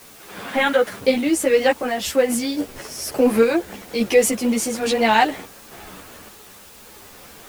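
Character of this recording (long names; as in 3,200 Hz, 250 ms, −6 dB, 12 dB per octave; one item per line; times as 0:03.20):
sample-and-hold tremolo, depth 70%
a quantiser's noise floor 8 bits, dither triangular
a shimmering, thickened sound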